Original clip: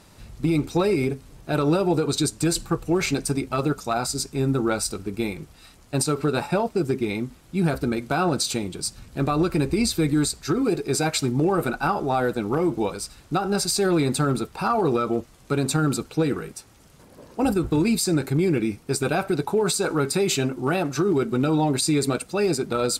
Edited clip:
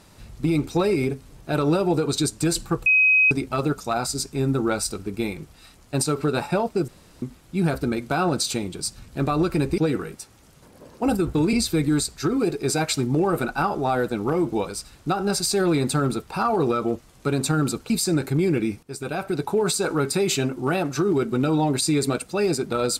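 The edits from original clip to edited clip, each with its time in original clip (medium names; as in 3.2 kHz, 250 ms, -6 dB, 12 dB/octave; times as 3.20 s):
2.86–3.31 s: bleep 2.53 kHz -13.5 dBFS
6.88–7.22 s: room tone
16.15–17.90 s: move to 9.78 s
18.83–19.51 s: fade in, from -14 dB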